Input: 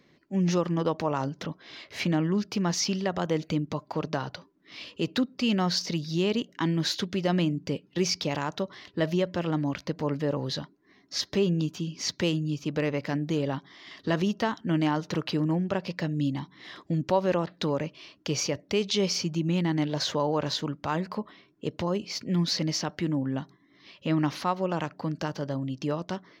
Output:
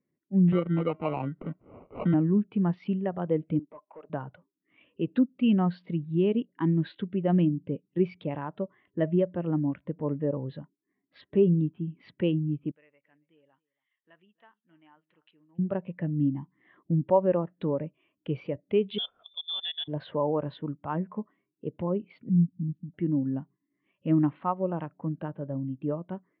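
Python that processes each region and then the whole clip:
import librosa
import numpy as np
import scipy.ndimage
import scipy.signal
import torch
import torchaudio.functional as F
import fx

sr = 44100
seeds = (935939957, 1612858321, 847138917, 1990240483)

y = fx.chain(x, sr, fx.sample_hold(seeds[0], rate_hz=1700.0, jitter_pct=0),
    fx.band_squash(depth_pct=40), at=(0.52, 2.14))
y = fx.chain(y, sr, fx.highpass(hz=430.0, slope=12),
    fx.clip_hard(threshold_db=-34.5), at=(3.59, 4.1))
y = fx.chain(y, sr, fx.pre_emphasis(coefficient=0.97),
    fx.echo_single(ms=278, db=-16.0), at=(12.71, 15.59))
y = fx.chain(y, sr, fx.level_steps(step_db=13),
    fx.freq_invert(carrier_hz=3700), at=(18.98, 19.88))
y = fx.chain(y, sr, fx.cheby1_bandstop(low_hz=280.0, high_hz=6600.0, order=5),
    fx.doppler_dist(depth_ms=0.17), at=(22.29, 22.94))
y = fx.wiener(y, sr, points=9)
y = scipy.signal.sosfilt(scipy.signal.butter(6, 3300.0, 'lowpass', fs=sr, output='sos'), y)
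y = fx.spectral_expand(y, sr, expansion=1.5)
y = y * 10.0 ** (1.5 / 20.0)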